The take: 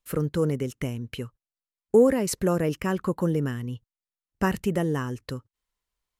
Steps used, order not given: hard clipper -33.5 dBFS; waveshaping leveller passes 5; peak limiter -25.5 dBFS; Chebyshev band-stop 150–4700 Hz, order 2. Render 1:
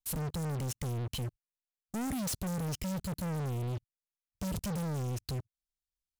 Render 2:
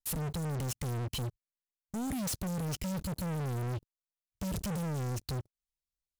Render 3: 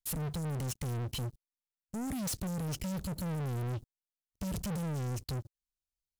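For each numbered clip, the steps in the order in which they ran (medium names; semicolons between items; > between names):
Chebyshev band-stop > waveshaping leveller > peak limiter > hard clipper; peak limiter > Chebyshev band-stop > waveshaping leveller > hard clipper; peak limiter > Chebyshev band-stop > hard clipper > waveshaping leveller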